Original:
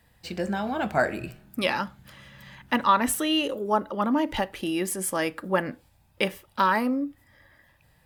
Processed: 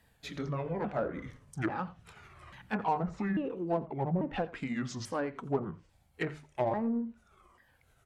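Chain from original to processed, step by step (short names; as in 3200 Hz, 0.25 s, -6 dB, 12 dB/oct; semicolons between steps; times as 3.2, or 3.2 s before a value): repeated pitch sweeps -9 st, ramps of 0.842 s; treble ducked by the level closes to 770 Hz, closed at -21 dBFS; notches 50/100/150 Hz; in parallel at -5.5 dB: soft clip -27 dBFS, distortion -9 dB; on the sum: echo 86 ms -19 dB; gain -7.5 dB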